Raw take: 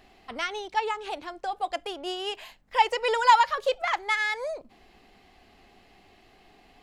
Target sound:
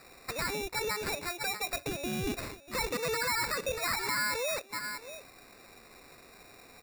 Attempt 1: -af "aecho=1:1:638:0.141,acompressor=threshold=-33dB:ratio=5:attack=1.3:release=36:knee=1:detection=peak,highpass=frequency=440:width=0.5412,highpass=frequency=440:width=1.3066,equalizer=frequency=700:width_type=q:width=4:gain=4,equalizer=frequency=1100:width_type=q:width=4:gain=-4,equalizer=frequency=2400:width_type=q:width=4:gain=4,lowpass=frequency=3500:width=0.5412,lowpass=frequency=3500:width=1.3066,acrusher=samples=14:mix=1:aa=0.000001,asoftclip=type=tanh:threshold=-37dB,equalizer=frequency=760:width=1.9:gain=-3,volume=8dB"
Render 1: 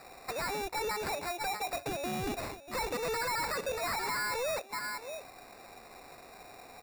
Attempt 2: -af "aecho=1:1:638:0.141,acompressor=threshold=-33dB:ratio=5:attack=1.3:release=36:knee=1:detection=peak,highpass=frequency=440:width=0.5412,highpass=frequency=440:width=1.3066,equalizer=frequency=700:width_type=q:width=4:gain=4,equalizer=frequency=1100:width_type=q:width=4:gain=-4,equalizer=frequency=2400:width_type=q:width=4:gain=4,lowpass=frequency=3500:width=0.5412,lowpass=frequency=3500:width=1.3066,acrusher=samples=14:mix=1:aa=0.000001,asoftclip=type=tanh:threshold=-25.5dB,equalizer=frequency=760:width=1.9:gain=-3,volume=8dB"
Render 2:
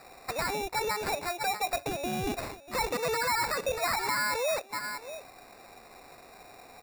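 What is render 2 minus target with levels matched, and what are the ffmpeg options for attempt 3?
1,000 Hz band +4.0 dB
-af "aecho=1:1:638:0.141,acompressor=threshold=-33dB:ratio=5:attack=1.3:release=36:knee=1:detection=peak,highpass=frequency=440:width=0.5412,highpass=frequency=440:width=1.3066,equalizer=frequency=700:width_type=q:width=4:gain=4,equalizer=frequency=1100:width_type=q:width=4:gain=-4,equalizer=frequency=2400:width_type=q:width=4:gain=4,lowpass=frequency=3500:width=0.5412,lowpass=frequency=3500:width=1.3066,acrusher=samples=14:mix=1:aa=0.000001,asoftclip=type=tanh:threshold=-25.5dB,equalizer=frequency=760:width=1.9:gain=-13,volume=8dB"

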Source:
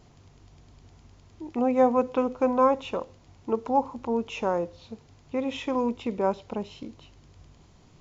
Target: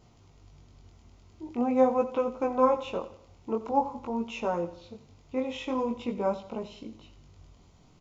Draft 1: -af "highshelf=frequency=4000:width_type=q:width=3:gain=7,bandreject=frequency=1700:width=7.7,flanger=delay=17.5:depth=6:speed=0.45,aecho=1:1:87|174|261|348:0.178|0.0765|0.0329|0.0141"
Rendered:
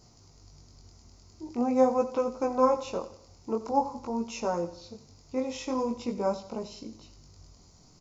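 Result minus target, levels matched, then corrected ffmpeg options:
8,000 Hz band +10.5 dB
-af "bandreject=frequency=1700:width=7.7,flanger=delay=17.5:depth=6:speed=0.45,aecho=1:1:87|174|261|348:0.178|0.0765|0.0329|0.0141"

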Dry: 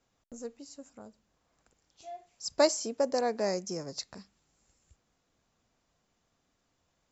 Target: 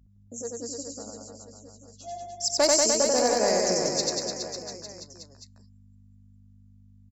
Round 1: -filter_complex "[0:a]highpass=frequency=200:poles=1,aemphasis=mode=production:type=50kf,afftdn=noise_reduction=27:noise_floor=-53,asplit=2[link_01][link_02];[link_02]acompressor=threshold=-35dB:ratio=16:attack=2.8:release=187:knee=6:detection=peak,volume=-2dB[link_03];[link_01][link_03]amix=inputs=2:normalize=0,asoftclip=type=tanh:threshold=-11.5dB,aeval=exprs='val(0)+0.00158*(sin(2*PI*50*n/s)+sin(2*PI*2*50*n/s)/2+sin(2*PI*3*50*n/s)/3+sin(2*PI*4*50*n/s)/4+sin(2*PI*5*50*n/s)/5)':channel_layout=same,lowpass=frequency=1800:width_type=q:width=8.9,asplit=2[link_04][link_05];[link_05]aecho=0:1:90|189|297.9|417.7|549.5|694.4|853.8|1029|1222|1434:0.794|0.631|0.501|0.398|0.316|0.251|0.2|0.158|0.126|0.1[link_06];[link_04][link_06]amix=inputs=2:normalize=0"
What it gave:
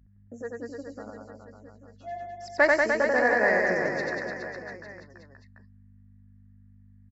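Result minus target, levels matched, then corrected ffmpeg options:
2,000 Hz band +14.0 dB; downward compressor: peak gain reduction +8.5 dB
-filter_complex "[0:a]highpass=frequency=200:poles=1,aemphasis=mode=production:type=50kf,afftdn=noise_reduction=27:noise_floor=-53,asplit=2[link_01][link_02];[link_02]acompressor=threshold=-26dB:ratio=16:attack=2.8:release=187:knee=6:detection=peak,volume=-2dB[link_03];[link_01][link_03]amix=inputs=2:normalize=0,asoftclip=type=tanh:threshold=-11.5dB,aeval=exprs='val(0)+0.00158*(sin(2*PI*50*n/s)+sin(2*PI*2*50*n/s)/2+sin(2*PI*3*50*n/s)/3+sin(2*PI*4*50*n/s)/4+sin(2*PI*5*50*n/s)/5)':channel_layout=same,asplit=2[link_04][link_05];[link_05]aecho=0:1:90|189|297.9|417.7|549.5|694.4|853.8|1029|1222|1434:0.794|0.631|0.501|0.398|0.316|0.251|0.2|0.158|0.126|0.1[link_06];[link_04][link_06]amix=inputs=2:normalize=0"

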